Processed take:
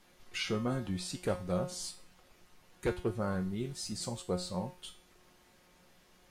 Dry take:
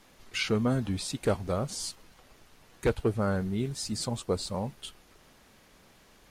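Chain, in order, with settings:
tuned comb filter 180 Hz, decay 0.38 s, harmonics all, mix 80%
level +5 dB

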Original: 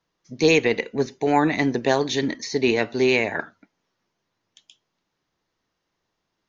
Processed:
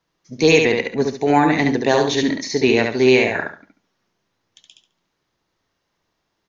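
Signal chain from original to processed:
repeating echo 70 ms, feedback 26%, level −4 dB
level +3 dB

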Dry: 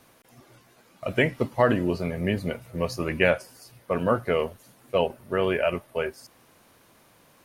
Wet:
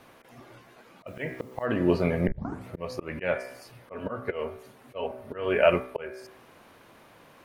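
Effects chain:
bass and treble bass −4 dB, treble −11 dB
0:02.27: tape start 0.40 s
hum removal 63.58 Hz, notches 38
volume swells 350 ms
0:01.07–0:01.66: bit-depth reduction 12 bits, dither triangular
0:03.92–0:05.59: notch comb filter 170 Hz
level +6 dB

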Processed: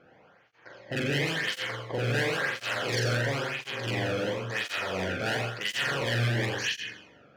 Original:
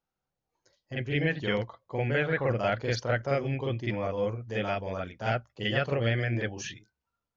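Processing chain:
compressor on every frequency bin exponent 0.6
on a send at −6 dB: convolution reverb, pre-delay 3 ms
on the sum: low-pass that shuts in the quiet parts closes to 1,700 Hz, open at −20.5 dBFS
in parallel at −1 dB: downward compressor, threshold −37 dBFS, peak gain reduction 17 dB
on the sum: hard clipping −24 dBFS, distortion −8 dB
parametric band 640 Hz −6 dB 2.3 octaves
flutter between parallel walls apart 7.3 metres, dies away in 0.64 s
through-zero flanger with one copy inverted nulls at 0.96 Hz, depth 1.1 ms
level +3.5 dB

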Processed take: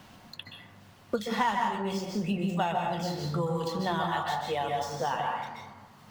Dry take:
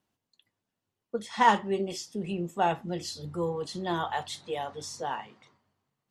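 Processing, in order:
running median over 5 samples
parametric band 370 Hz −8.5 dB 0.77 octaves
dense smooth reverb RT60 0.73 s, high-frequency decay 0.45×, pre-delay 115 ms, DRR 1 dB
multiband upward and downward compressor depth 100%

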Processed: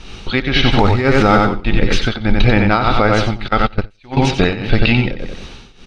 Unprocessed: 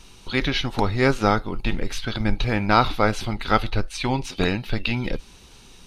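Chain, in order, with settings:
0:00.79–0:01.37: converter with a step at zero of −27 dBFS
low-pass filter 3,900 Hz 12 dB per octave
notch filter 990 Hz, Q 8.8
repeating echo 91 ms, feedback 33%, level −6.5 dB
0:01.99–0:02.45: surface crackle 19 per second → 86 per second −60 dBFS
0:03.48–0:04.17: noise gate −18 dBFS, range −25 dB
shaped tremolo triangle 1.7 Hz, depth 90%
boost into a limiter +17.5 dB
level −1 dB

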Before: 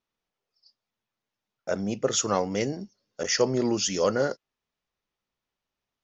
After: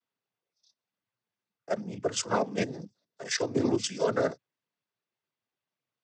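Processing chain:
output level in coarse steps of 13 dB
cochlear-implant simulation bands 16
high-frequency loss of the air 65 metres
level +1.5 dB

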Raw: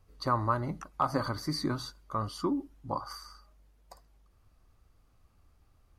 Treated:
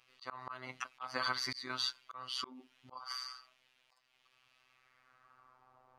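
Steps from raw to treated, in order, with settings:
band-pass filter sweep 2,800 Hz → 850 Hz, 0:04.60–0:05.80
phases set to zero 128 Hz
volume swells 317 ms
level +18 dB

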